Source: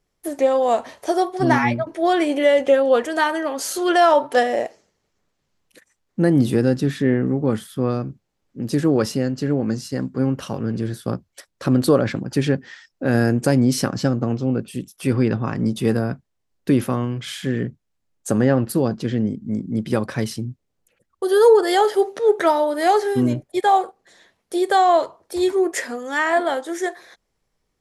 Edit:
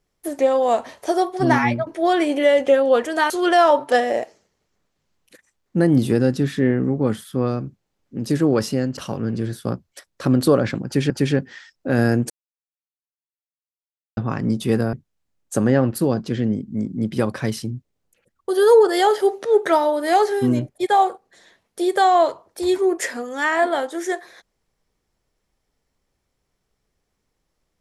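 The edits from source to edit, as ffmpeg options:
ffmpeg -i in.wav -filter_complex "[0:a]asplit=7[link_01][link_02][link_03][link_04][link_05][link_06][link_07];[link_01]atrim=end=3.302[link_08];[link_02]atrim=start=3.728:end=9.402[link_09];[link_03]atrim=start=10.378:end=12.512[link_10];[link_04]atrim=start=12.258:end=13.46,asetpts=PTS-STARTPTS,afade=type=out:start_time=1.198:duration=0.004:curve=hsin[link_11];[link_05]atrim=start=13.46:end=15.33,asetpts=PTS-STARTPTS,volume=0[link_12];[link_06]atrim=start=15.33:end=16.092,asetpts=PTS-STARTPTS,afade=type=in:duration=0.004:curve=hsin[link_13];[link_07]atrim=start=17.668[link_14];[link_08][link_09]acrossfade=duration=0.004:curve1=hsin:curve2=hsin[link_15];[link_15][link_10]acrossfade=duration=0.004:curve1=hsin:curve2=hsin[link_16];[link_11][link_12][link_13]concat=n=3:v=0:a=1[link_17];[link_16][link_17]acrossfade=duration=0.004:curve1=hsin:curve2=hsin[link_18];[link_18][link_14]acrossfade=duration=0.004:curve1=hsin:curve2=hsin" out.wav

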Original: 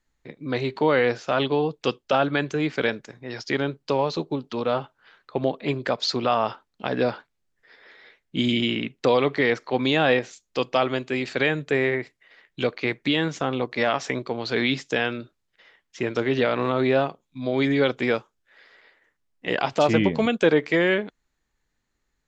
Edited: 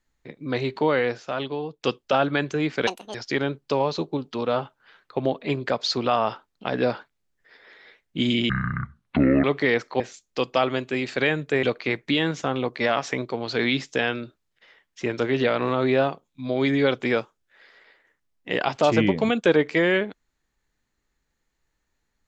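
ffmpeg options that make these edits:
ffmpeg -i in.wav -filter_complex "[0:a]asplit=8[link_01][link_02][link_03][link_04][link_05][link_06][link_07][link_08];[link_01]atrim=end=1.83,asetpts=PTS-STARTPTS,afade=type=out:start_time=0.76:duration=1.07:curve=qua:silence=0.398107[link_09];[link_02]atrim=start=1.83:end=2.874,asetpts=PTS-STARTPTS,afade=type=in:duration=0.004:curve=hsin:silence=0.398107[link_10];[link_03]atrim=start=2.87:end=3.33,asetpts=PTS-STARTPTS,asetrate=74088,aresample=44100[link_11];[link_04]atrim=start=3.326:end=8.684[link_12];[link_05]atrim=start=8.68:end=9.2,asetpts=PTS-STARTPTS,asetrate=24255,aresample=44100[link_13];[link_06]atrim=start=9.196:end=9.762[link_14];[link_07]atrim=start=10.188:end=11.822[link_15];[link_08]atrim=start=12.598[link_16];[link_09][link_10]concat=n=2:v=0:a=1[link_17];[link_17][link_11]acrossfade=duration=0.004:curve1=hsin:curve2=hsin[link_18];[link_18][link_12]acrossfade=duration=0.004:curve1=hsin:curve2=hsin[link_19];[link_19][link_13]acrossfade=duration=0.004:curve1=hsin:curve2=hsin[link_20];[link_20][link_14]acrossfade=duration=0.004:curve1=hsin:curve2=hsin[link_21];[link_21][link_15]acrossfade=duration=0.004:curve1=hsin:curve2=hsin[link_22];[link_22][link_16]acrossfade=duration=0.004:curve1=hsin:curve2=hsin" out.wav

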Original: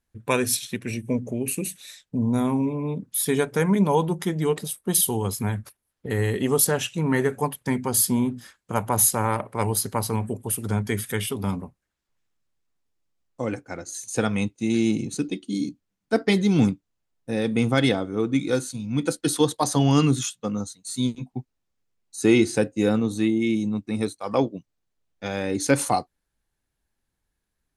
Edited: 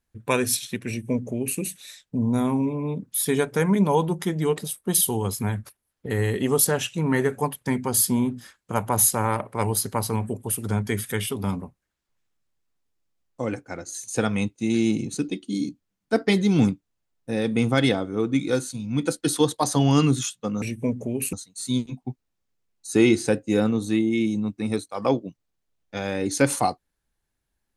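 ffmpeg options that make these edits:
ffmpeg -i in.wav -filter_complex "[0:a]asplit=3[link_01][link_02][link_03];[link_01]atrim=end=20.622[link_04];[link_02]atrim=start=0.878:end=1.592[link_05];[link_03]atrim=start=20.618[link_06];[link_04][link_05]acrossfade=duration=0.004:curve1=hsin:curve2=hsin[link_07];[link_07][link_06]acrossfade=duration=0.004:curve1=hsin:curve2=hsin" out.wav

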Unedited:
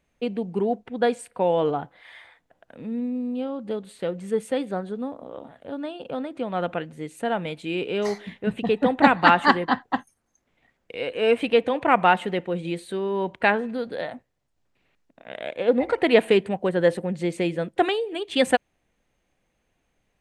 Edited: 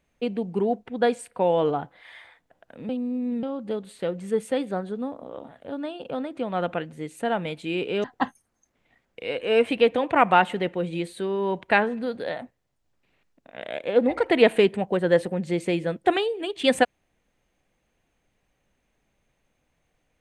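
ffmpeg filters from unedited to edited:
ffmpeg -i in.wav -filter_complex "[0:a]asplit=4[link_01][link_02][link_03][link_04];[link_01]atrim=end=2.892[link_05];[link_02]atrim=start=2.888:end=3.432,asetpts=PTS-STARTPTS,areverse[link_06];[link_03]atrim=start=3.428:end=8.042[link_07];[link_04]atrim=start=9.758[link_08];[link_05][link_06]acrossfade=duration=0.004:curve1=hsin:curve2=hsin[link_09];[link_09][link_07]acrossfade=duration=0.004:curve1=hsin:curve2=hsin[link_10];[link_10][link_08]acrossfade=duration=0.004:curve1=hsin:curve2=hsin" out.wav

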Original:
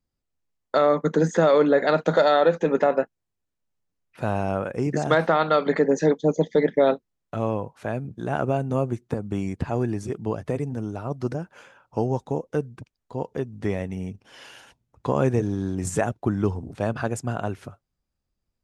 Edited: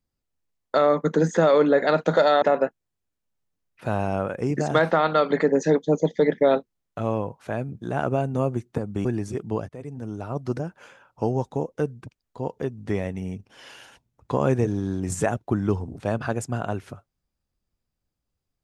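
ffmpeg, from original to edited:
ffmpeg -i in.wav -filter_complex "[0:a]asplit=4[link_01][link_02][link_03][link_04];[link_01]atrim=end=2.422[link_05];[link_02]atrim=start=2.778:end=9.412[link_06];[link_03]atrim=start=9.798:end=10.44,asetpts=PTS-STARTPTS,afade=type=out:start_time=0.638:duration=0.004:curve=hsin:silence=0.11885[link_07];[link_04]atrim=start=10.44,asetpts=PTS-STARTPTS,afade=type=in:duration=0.59:silence=0.11885[link_08];[link_05][link_06]acrossfade=duration=0.004:curve1=hsin:curve2=hsin[link_09];[link_07][link_08]concat=n=2:v=0:a=1[link_10];[link_09][link_10]acrossfade=duration=0.004:curve1=hsin:curve2=hsin" out.wav

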